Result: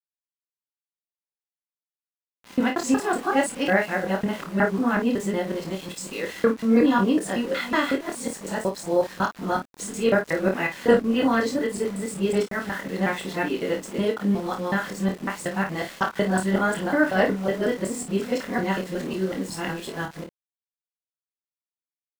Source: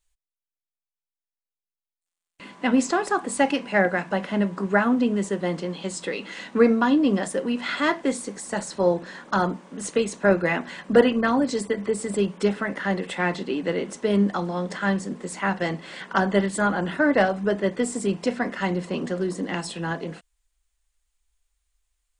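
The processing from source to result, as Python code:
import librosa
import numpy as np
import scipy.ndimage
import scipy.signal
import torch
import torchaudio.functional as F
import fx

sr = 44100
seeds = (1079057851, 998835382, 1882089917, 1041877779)

y = fx.local_reverse(x, sr, ms=184.0)
y = np.where(np.abs(y) >= 10.0 ** (-37.0 / 20.0), y, 0.0)
y = fx.room_early_taps(y, sr, ms=(26, 53), db=(-4.5, -9.5))
y = y * 10.0 ** (-2.0 / 20.0)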